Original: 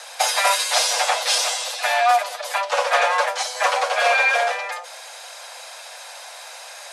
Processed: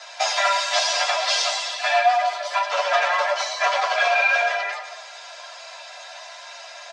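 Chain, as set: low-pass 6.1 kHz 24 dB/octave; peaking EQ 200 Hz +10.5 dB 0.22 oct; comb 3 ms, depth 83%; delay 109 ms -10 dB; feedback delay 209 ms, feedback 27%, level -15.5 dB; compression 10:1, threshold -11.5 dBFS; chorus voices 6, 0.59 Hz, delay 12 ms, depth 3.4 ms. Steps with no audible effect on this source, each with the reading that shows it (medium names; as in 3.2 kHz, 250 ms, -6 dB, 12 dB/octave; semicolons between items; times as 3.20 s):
peaking EQ 200 Hz: input has nothing below 430 Hz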